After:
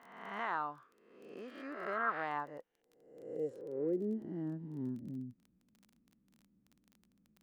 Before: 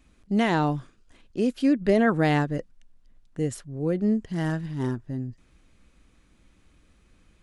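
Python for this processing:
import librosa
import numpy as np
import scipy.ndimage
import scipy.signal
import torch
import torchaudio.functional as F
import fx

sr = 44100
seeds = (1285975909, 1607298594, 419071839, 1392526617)

y = fx.spec_swells(x, sr, rise_s=0.99)
y = fx.filter_sweep_bandpass(y, sr, from_hz=1200.0, to_hz=210.0, start_s=2.17, end_s=4.84, q=3.5)
y = fx.dmg_crackle(y, sr, seeds[0], per_s=20.0, level_db=-44.0)
y = y * 10.0 ** (-4.5 / 20.0)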